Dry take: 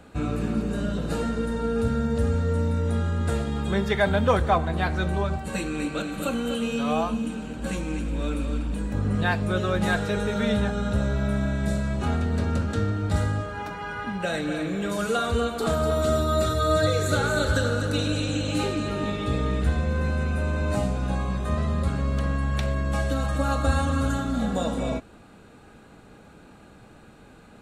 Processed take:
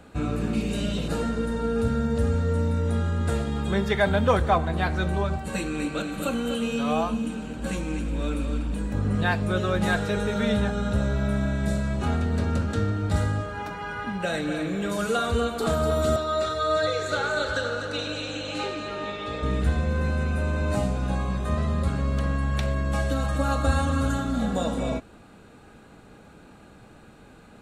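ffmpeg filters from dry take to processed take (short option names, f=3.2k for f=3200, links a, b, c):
-filter_complex "[0:a]asettb=1/sr,asplit=3[a][b][c];[a]atrim=end=0.534[d];[b]atrim=start=0.53:end=1.08,asetpts=PTS-STARTPTS,afade=t=in:d=0.004:c=qsin,afade=t=out:st=0.546:d=0.004:c=qsin,highshelf=f=1.9k:t=q:w=3:g=6.5[e];[c]atrim=start=1.076[f];[d][e]acrossfade=d=0.004:c1=hsin:c2=qsin[g];[g][f]acrossfade=d=0.004:c1=qsin:c2=hsin,asettb=1/sr,asplit=3[h][i][j];[h]atrim=end=16.164[k];[i]atrim=start=16.16:end=19.43,asetpts=PTS-STARTPTS,afade=t=in:d=0.004:c=qsin,afade=t=out:st=3.266:d=0.004:c=qsin,acrossover=split=400 6700:gain=0.224 1 0.1[l][m][n];[l][m][n]amix=inputs=3:normalize=0[o];[j]atrim=start=19.426[p];[k][o]acrossfade=d=0.004:c1=hsin:c2=qsin[q];[q][p]acrossfade=d=0.004:c1=qsin:c2=hsin"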